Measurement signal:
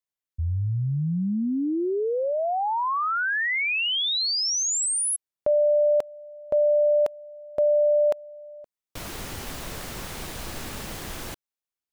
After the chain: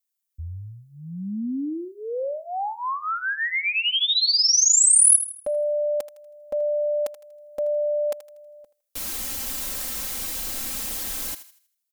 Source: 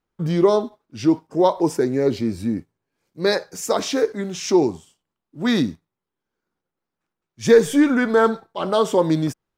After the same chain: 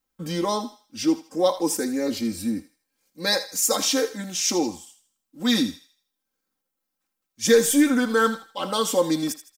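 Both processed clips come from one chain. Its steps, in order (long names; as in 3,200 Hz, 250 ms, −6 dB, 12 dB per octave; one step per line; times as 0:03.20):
first-order pre-emphasis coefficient 0.8
comb filter 3.8 ms, depth 91%
on a send: feedback echo with a high-pass in the loop 80 ms, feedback 38%, high-pass 950 Hz, level −12 dB
on the sum: level +6.5 dB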